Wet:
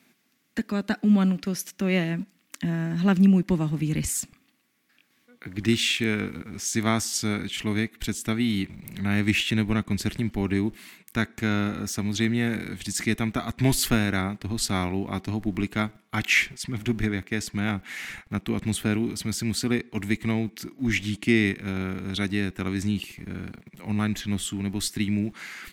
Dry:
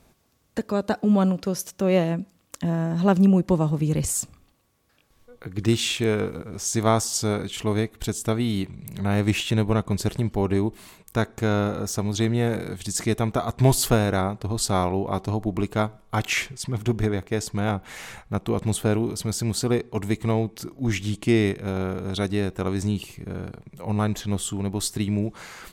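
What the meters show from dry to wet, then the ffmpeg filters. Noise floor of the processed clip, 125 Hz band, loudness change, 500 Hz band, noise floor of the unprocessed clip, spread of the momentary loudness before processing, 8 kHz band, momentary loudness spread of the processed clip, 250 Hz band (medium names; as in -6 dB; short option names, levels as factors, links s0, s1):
-66 dBFS, -3.5 dB, -1.5 dB, -7.5 dB, -62 dBFS, 9 LU, -2.5 dB, 10 LU, 0.0 dB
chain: -filter_complex "[0:a]equalizer=f=125:t=o:w=1:g=-6,equalizer=f=250:t=o:w=1:g=5,equalizer=f=500:t=o:w=1:g=-11,equalizer=f=1000:t=o:w=1:g=-7,equalizer=f=2000:t=o:w=1:g=8,equalizer=f=8000:t=o:w=1:g=-3,acrossover=split=140|1500|4700[s0][s1][s2][s3];[s0]aeval=exprs='val(0)*gte(abs(val(0)),0.00376)':c=same[s4];[s4][s1][s2][s3]amix=inputs=4:normalize=0"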